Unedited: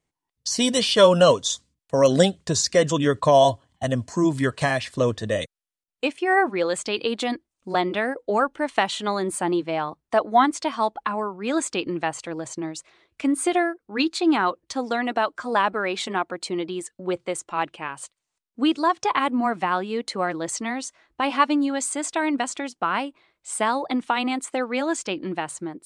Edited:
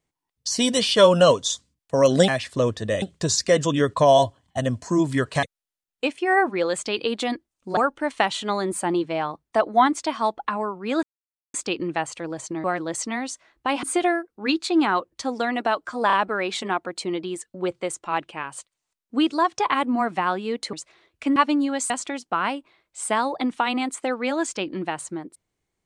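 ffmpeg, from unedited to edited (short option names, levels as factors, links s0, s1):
-filter_complex "[0:a]asplit=13[s0][s1][s2][s3][s4][s5][s6][s7][s8][s9][s10][s11][s12];[s0]atrim=end=2.282[s13];[s1]atrim=start=4.688:end=5.432[s14];[s2]atrim=start=2.278:end=4.692[s15];[s3]atrim=start=5.428:end=7.772[s16];[s4]atrim=start=8.348:end=11.61,asetpts=PTS-STARTPTS,afade=t=out:st=3.258:d=0.004:c=hsin,apad=pad_dur=0.51[s17];[s5]atrim=start=11.61:end=12.712,asetpts=PTS-STARTPTS,afade=t=in:d=0.004:c=hsin[s18];[s6]atrim=start=20.178:end=21.372[s19];[s7]atrim=start=13.338:end=15.612[s20];[s8]atrim=start=15.578:end=15.612[s21];[s9]atrim=start=15.578:end=20.182[s22];[s10]atrim=start=12.708:end=13.342[s23];[s11]atrim=start=21.368:end=21.912[s24];[s12]atrim=start=22.398[s25];[s13][s14]acrossfade=d=0.004:c1=hsin:c2=hsin[s26];[s26][s15]acrossfade=d=0.004:c1=hsin:c2=hsin[s27];[s27][s16]acrossfade=d=0.004:c1=hsin:c2=hsin[s28];[s17][s18]concat=n=2:v=0:a=1[s29];[s28][s29]acrossfade=d=0.004:c1=hsin:c2=hsin[s30];[s30][s19]acrossfade=d=0.004:c1=hsin:c2=hsin[s31];[s31][s20]acrossfade=d=0.004:c1=hsin:c2=hsin[s32];[s32][s21]acrossfade=d=0.004:c1=hsin:c2=hsin[s33];[s33][s22]acrossfade=d=0.004:c1=hsin:c2=hsin[s34];[s34][s23]acrossfade=d=0.004:c1=hsin:c2=hsin[s35];[s35][s24]acrossfade=d=0.004:c1=hsin:c2=hsin[s36];[s36][s25]acrossfade=d=0.004:c1=hsin:c2=hsin"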